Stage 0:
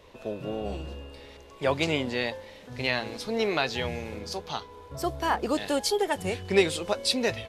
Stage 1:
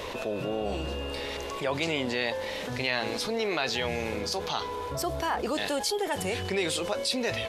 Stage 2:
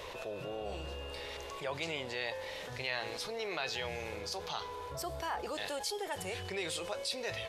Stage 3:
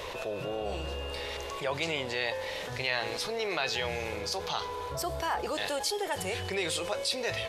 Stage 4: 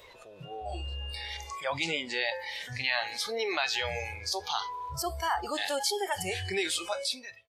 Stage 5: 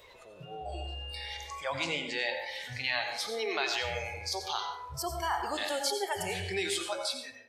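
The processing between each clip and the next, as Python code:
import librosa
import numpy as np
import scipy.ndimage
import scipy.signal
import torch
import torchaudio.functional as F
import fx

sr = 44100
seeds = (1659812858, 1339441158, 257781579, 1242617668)

y1 = fx.low_shelf(x, sr, hz=260.0, db=-7.5)
y1 = fx.env_flatten(y1, sr, amount_pct=70)
y1 = y1 * 10.0 ** (-7.5 / 20.0)
y2 = fx.peak_eq(y1, sr, hz=240.0, db=-11.0, octaves=0.73)
y2 = fx.comb_fb(y2, sr, f0_hz=170.0, decay_s=1.0, harmonics='odd', damping=0.0, mix_pct=60)
y3 = y2 + 10.0 ** (-22.0 / 20.0) * np.pad(y2, (int(316 * sr / 1000.0), 0))[:len(y2)]
y3 = y3 * 10.0 ** (6.0 / 20.0)
y4 = fx.fade_out_tail(y3, sr, length_s=0.55)
y4 = fx.noise_reduce_blind(y4, sr, reduce_db=18)
y4 = y4 * 10.0 ** (2.0 / 20.0)
y5 = fx.rev_plate(y4, sr, seeds[0], rt60_s=0.65, hf_ratio=0.5, predelay_ms=75, drr_db=5.5)
y5 = y5 * 10.0 ** (-2.5 / 20.0)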